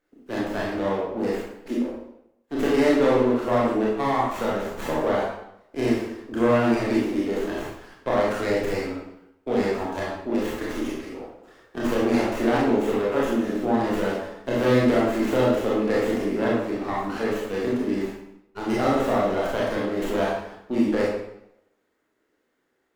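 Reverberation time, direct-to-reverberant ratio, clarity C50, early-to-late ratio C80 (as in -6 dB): 0.80 s, -6.0 dB, 0.0 dB, 3.5 dB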